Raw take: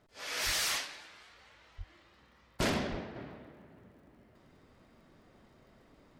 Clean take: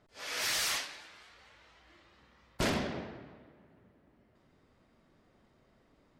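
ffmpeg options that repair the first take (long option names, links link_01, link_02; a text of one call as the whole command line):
ffmpeg -i in.wav -filter_complex "[0:a]adeclick=threshold=4,asplit=3[link_01][link_02][link_03];[link_01]afade=type=out:start_time=0.45:duration=0.02[link_04];[link_02]highpass=frequency=140:width=0.5412,highpass=frequency=140:width=1.3066,afade=type=in:start_time=0.45:duration=0.02,afade=type=out:start_time=0.57:duration=0.02[link_05];[link_03]afade=type=in:start_time=0.57:duration=0.02[link_06];[link_04][link_05][link_06]amix=inputs=3:normalize=0,asplit=3[link_07][link_08][link_09];[link_07]afade=type=out:start_time=1.77:duration=0.02[link_10];[link_08]highpass=frequency=140:width=0.5412,highpass=frequency=140:width=1.3066,afade=type=in:start_time=1.77:duration=0.02,afade=type=out:start_time=1.89:duration=0.02[link_11];[link_09]afade=type=in:start_time=1.89:duration=0.02[link_12];[link_10][link_11][link_12]amix=inputs=3:normalize=0,asplit=3[link_13][link_14][link_15];[link_13]afade=type=out:start_time=2.9:duration=0.02[link_16];[link_14]highpass=frequency=140:width=0.5412,highpass=frequency=140:width=1.3066,afade=type=in:start_time=2.9:duration=0.02,afade=type=out:start_time=3.02:duration=0.02[link_17];[link_15]afade=type=in:start_time=3.02:duration=0.02[link_18];[link_16][link_17][link_18]amix=inputs=3:normalize=0,asetnsamples=nb_out_samples=441:pad=0,asendcmd='3.16 volume volume -5.5dB',volume=0dB" out.wav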